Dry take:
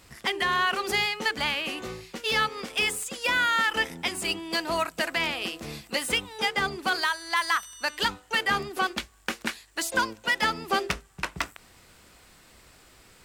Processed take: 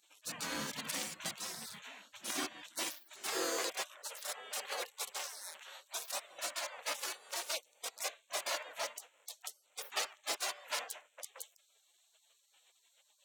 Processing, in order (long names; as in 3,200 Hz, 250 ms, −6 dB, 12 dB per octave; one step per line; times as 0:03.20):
adaptive Wiener filter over 9 samples
gate on every frequency bin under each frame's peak −25 dB weak
high-pass filter sweep 180 Hz → 550 Hz, 0:01.81–0:04.00
level +4 dB